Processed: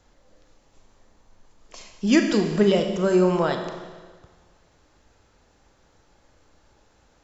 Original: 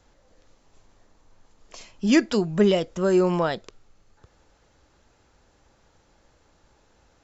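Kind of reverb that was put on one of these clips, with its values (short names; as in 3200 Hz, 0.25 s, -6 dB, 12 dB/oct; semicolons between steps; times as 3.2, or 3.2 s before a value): Schroeder reverb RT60 1.5 s, combs from 29 ms, DRR 5 dB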